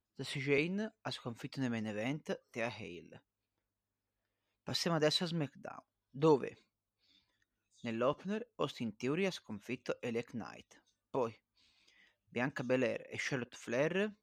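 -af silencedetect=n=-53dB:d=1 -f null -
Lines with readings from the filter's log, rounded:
silence_start: 3.18
silence_end: 4.67 | silence_duration: 1.49
silence_start: 6.54
silence_end: 7.84 | silence_duration: 1.29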